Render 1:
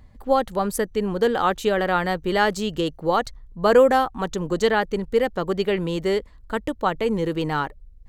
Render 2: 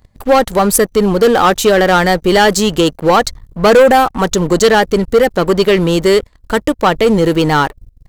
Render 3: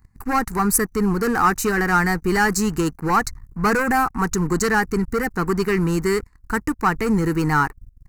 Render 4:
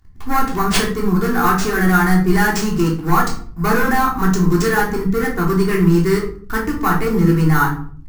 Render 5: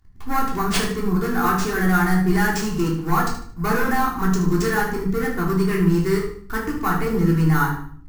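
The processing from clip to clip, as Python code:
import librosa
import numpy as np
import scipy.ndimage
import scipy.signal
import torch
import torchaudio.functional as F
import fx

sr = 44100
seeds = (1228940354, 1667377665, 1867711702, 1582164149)

y1 = fx.bass_treble(x, sr, bass_db=-1, treble_db=6)
y1 = fx.leveller(y1, sr, passes=3)
y1 = y1 * librosa.db_to_amplitude(2.5)
y2 = fx.fixed_phaser(y1, sr, hz=1400.0, stages=4)
y2 = y2 * librosa.db_to_amplitude(-4.0)
y3 = fx.sample_hold(y2, sr, seeds[0], rate_hz=13000.0, jitter_pct=0)
y3 = fx.room_shoebox(y3, sr, seeds[1], volume_m3=470.0, walls='furnished', distance_m=3.3)
y3 = y3 * librosa.db_to_amplitude(-3.0)
y4 = fx.echo_feedback(y3, sr, ms=75, feedback_pct=33, wet_db=-10)
y4 = y4 * librosa.db_to_amplitude(-5.0)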